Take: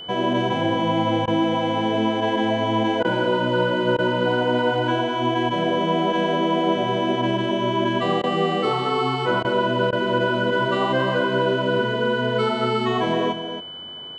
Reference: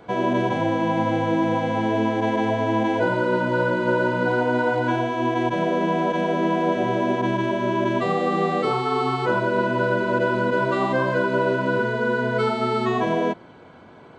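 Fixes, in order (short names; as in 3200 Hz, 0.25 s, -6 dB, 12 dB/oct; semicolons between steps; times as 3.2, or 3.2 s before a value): notch 3000 Hz, Q 30; interpolate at 1.26/3.03/3.97/8.22/9.43/9.91, 15 ms; inverse comb 0.271 s -9.5 dB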